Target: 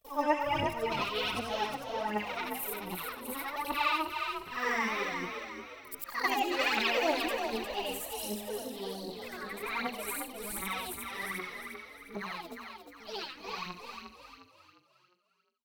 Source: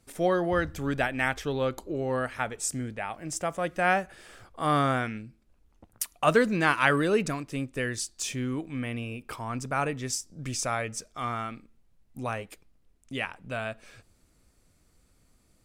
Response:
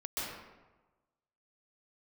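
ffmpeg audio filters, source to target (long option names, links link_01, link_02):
-filter_complex "[0:a]afftfilt=real='re':imag='-im':win_size=8192:overlap=0.75,agate=range=-53dB:threshold=-57dB:ratio=16:detection=peak,asetrate=72056,aresample=44100,atempo=0.612027,aphaser=in_gain=1:out_gain=1:delay=4:decay=0.71:speed=1.3:type=triangular,asplit=2[link_01][link_02];[link_02]asplit=5[link_03][link_04][link_05][link_06][link_07];[link_03]adelay=355,afreqshift=44,volume=-6dB[link_08];[link_04]adelay=710,afreqshift=88,volume=-13.5dB[link_09];[link_05]adelay=1065,afreqshift=132,volume=-21.1dB[link_10];[link_06]adelay=1420,afreqshift=176,volume=-28.6dB[link_11];[link_07]adelay=1775,afreqshift=220,volume=-36.1dB[link_12];[link_08][link_09][link_10][link_11][link_12]amix=inputs=5:normalize=0[link_13];[link_01][link_13]amix=inputs=2:normalize=0,volume=-4.5dB"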